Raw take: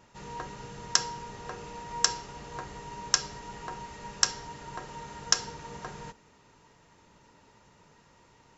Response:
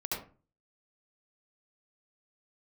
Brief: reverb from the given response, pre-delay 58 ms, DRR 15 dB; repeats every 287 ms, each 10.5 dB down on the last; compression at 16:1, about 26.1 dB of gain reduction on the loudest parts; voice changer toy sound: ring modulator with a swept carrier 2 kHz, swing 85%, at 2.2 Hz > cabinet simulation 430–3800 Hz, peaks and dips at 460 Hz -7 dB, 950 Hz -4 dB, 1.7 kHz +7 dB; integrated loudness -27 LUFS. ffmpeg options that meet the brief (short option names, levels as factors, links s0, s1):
-filter_complex "[0:a]acompressor=threshold=0.00398:ratio=16,aecho=1:1:287|574|861:0.299|0.0896|0.0269,asplit=2[s0][s1];[1:a]atrim=start_sample=2205,adelay=58[s2];[s1][s2]afir=irnorm=-1:irlink=0,volume=0.112[s3];[s0][s3]amix=inputs=2:normalize=0,aeval=exprs='val(0)*sin(2*PI*2000*n/s+2000*0.85/2.2*sin(2*PI*2.2*n/s))':c=same,highpass=430,equalizer=f=460:t=q:w=4:g=-7,equalizer=f=950:t=q:w=4:g=-4,equalizer=f=1700:t=q:w=4:g=7,lowpass=f=3800:w=0.5412,lowpass=f=3800:w=1.3066,volume=23.7"